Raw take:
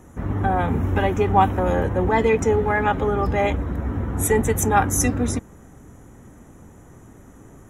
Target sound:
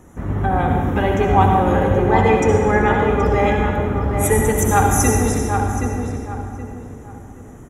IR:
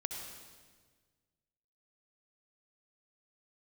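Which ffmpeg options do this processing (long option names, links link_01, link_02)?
-filter_complex "[0:a]asplit=2[link_01][link_02];[link_02]adelay=774,lowpass=frequency=2100:poles=1,volume=-5dB,asplit=2[link_03][link_04];[link_04]adelay=774,lowpass=frequency=2100:poles=1,volume=0.32,asplit=2[link_05][link_06];[link_06]adelay=774,lowpass=frequency=2100:poles=1,volume=0.32,asplit=2[link_07][link_08];[link_08]adelay=774,lowpass=frequency=2100:poles=1,volume=0.32[link_09];[link_01][link_03][link_05][link_07][link_09]amix=inputs=5:normalize=0,asettb=1/sr,asplit=3[link_10][link_11][link_12];[link_10]atrim=end=4.054[link_13];[link_11]atrim=start=4.05:end=4.88,asetpts=PTS-STARTPTS,afade=type=in:duration=0.004:curve=qsin,afade=type=out:start_time=0.826:duration=0.004:curve=qsin,aeval=exprs='sgn(val(0))*max(abs(val(0))-0.00251,0)':channel_layout=same[link_14];[link_12]atrim=start=4.876[link_15];[link_13][link_14]acrossfade=duration=0.004:curve1=hsin:curve2=qsin[link_16];[link_16][link_15]acrossfade=duration=0.004:curve1=qsin:curve2=hsin[link_17];[1:a]atrim=start_sample=2205[link_18];[link_17][link_18]afir=irnorm=-1:irlink=0,volume=2.5dB"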